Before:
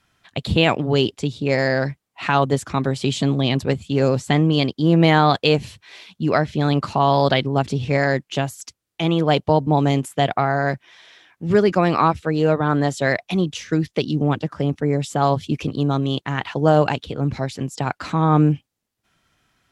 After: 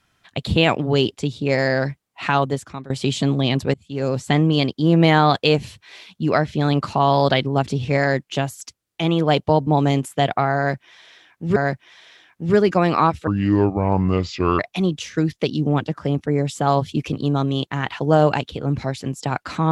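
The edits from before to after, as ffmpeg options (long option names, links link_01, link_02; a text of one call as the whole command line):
ffmpeg -i in.wav -filter_complex "[0:a]asplit=6[link_01][link_02][link_03][link_04][link_05][link_06];[link_01]atrim=end=2.9,asetpts=PTS-STARTPTS,afade=type=out:start_time=2.3:duration=0.6:silence=0.0944061[link_07];[link_02]atrim=start=2.9:end=3.74,asetpts=PTS-STARTPTS,afade=type=in:duration=0.004:curve=hsin:silence=0.0944061,afade=type=out:start_time=0.836:duration=0.004:curve=hsin:silence=0.0749894[link_08];[link_03]atrim=start=3.74:end=11.562,asetpts=PTS-STARTPTS,afade=type=in:duration=0.57:silence=0.0749894[link_09];[link_04]atrim=start=10.568:end=12.284[link_10];[link_05]atrim=start=12.28:end=13.14,asetpts=PTS-STARTPTS,asetrate=28665,aresample=44100[link_11];[link_06]atrim=start=13.136[link_12];[link_07][link_08][link_09]concat=n=3:v=0:a=1[link_13];[link_13][link_10]acrossfade=duration=0.004:curve1=hsin:curve2=hsin[link_14];[link_14][link_11]acrossfade=duration=0.004:curve1=hsin:curve2=hsin[link_15];[link_15][link_12]acrossfade=duration=0.004:curve1=hsin:curve2=hsin" out.wav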